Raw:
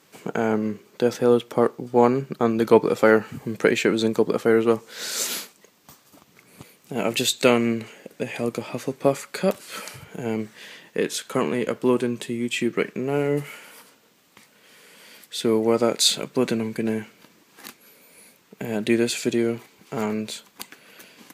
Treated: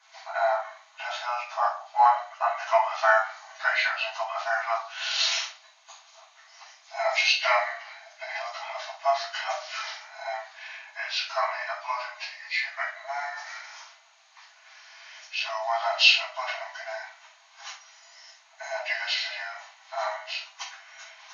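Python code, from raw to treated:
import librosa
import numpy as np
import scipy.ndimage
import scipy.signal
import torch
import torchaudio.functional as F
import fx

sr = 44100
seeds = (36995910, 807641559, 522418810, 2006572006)

y = fx.freq_compress(x, sr, knee_hz=1400.0, ratio=1.5)
y = fx.brickwall_highpass(y, sr, low_hz=620.0)
y = fx.room_shoebox(y, sr, seeds[0], volume_m3=330.0, walls='furnished', distance_m=5.1)
y = y * librosa.db_to_amplitude(-5.5)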